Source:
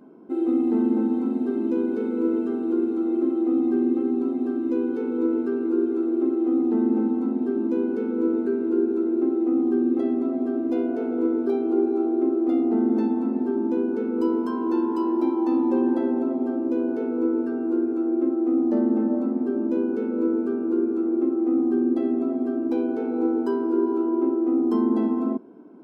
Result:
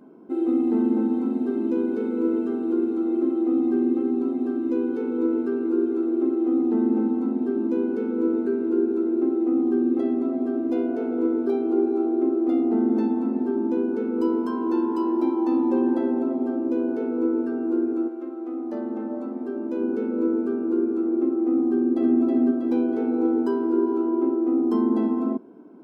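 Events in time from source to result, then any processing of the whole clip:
18.07–19.80 s: high-pass 1.2 kHz -> 380 Hz 6 dB/octave
21.68–22.19 s: echo throw 320 ms, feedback 60%, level -3 dB

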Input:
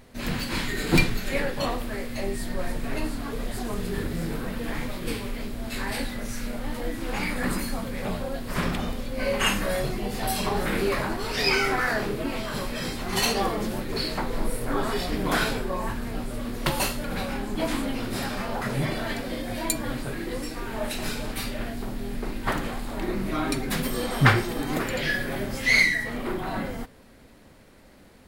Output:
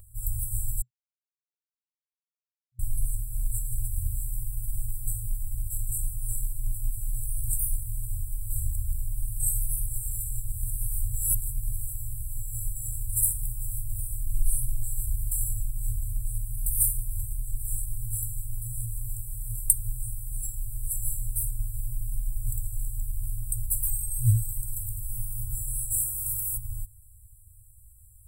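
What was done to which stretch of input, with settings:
0.82–2.79 s: mute
9.86–11.76 s: reverse
25.90–26.56 s: spectral peaks clipped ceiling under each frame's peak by 29 dB
whole clip: FFT band-reject 120–7400 Hz; treble shelf 5.7 kHz +9 dB; comb 1.7 ms, depth 84%

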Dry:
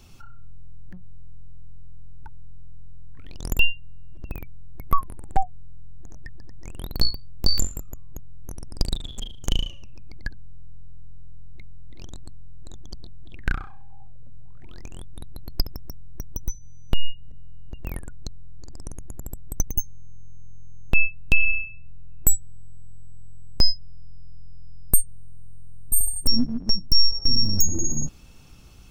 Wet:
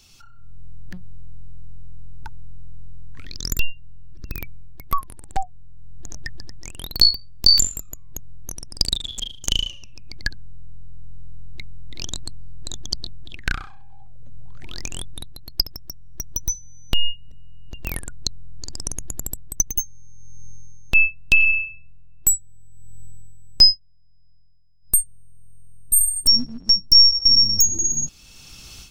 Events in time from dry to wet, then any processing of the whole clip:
3.26–4.39 s: static phaser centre 2.9 kHz, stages 6
23.64–24.95 s: dip -15.5 dB, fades 0.14 s
whole clip: treble shelf 12 kHz +9.5 dB; level rider gain up to 14 dB; peaking EQ 4.8 kHz +14.5 dB 2.5 oct; trim -9 dB

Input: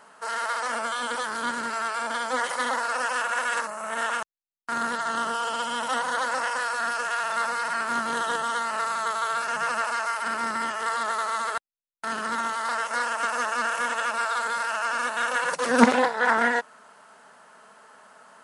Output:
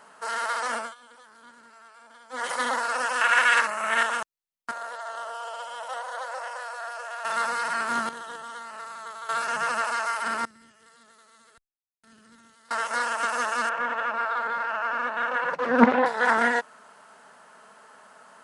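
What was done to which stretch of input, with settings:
0.74–2.50 s: dip -22.5 dB, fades 0.21 s
3.21–4.03 s: peaking EQ 2.3 kHz +11.5 dB 1.7 oct
4.71–7.25 s: ladder high-pass 530 Hz, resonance 60%
8.09–9.29 s: gain -11.5 dB
10.45–12.71 s: amplifier tone stack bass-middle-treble 10-0-1
13.69–16.06 s: low-pass 2.1 kHz

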